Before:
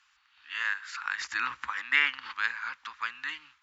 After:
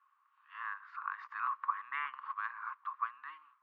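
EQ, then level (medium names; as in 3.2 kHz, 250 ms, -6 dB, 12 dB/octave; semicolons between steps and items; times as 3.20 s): band-pass filter 1.1 kHz, Q 12; distance through air 210 m; +9.0 dB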